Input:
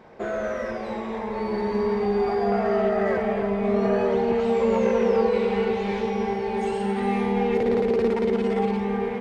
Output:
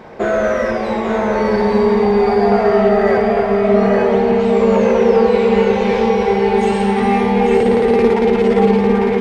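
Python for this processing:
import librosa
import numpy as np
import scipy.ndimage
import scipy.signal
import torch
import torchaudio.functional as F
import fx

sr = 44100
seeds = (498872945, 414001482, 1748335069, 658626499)

p1 = fx.rider(x, sr, range_db=3, speed_s=2.0)
p2 = p1 + fx.echo_single(p1, sr, ms=850, db=-5.0, dry=0)
y = F.gain(torch.from_numpy(p2), 9.0).numpy()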